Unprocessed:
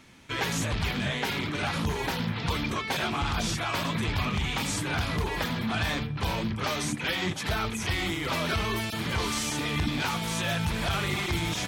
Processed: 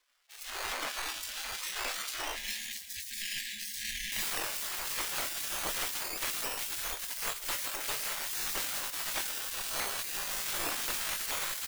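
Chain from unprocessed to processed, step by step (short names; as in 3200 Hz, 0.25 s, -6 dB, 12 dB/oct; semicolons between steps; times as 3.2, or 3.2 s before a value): median filter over 25 samples; decimation with a swept rate 16×, swing 60% 0.23 Hz; 2.35–4.23 spectral delete 210–1600 Hz; high shelf 6300 Hz -3 dB, from 4.12 s +11 dB; spectral gate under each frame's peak -25 dB weak; doubler 24 ms -11.5 dB; frequency-shifting echo 0.122 s, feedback 63%, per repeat -32 Hz, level -21 dB; AGC gain up to 13 dB; soft clip -20 dBFS, distortion -9 dB; low shelf 61 Hz +9.5 dB; gain -3 dB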